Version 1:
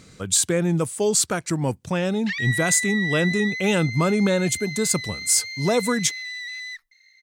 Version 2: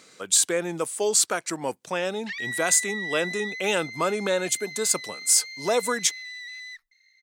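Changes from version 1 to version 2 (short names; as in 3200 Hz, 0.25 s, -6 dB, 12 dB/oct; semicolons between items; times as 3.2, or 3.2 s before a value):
speech: add HPF 430 Hz 12 dB/oct; background -5.5 dB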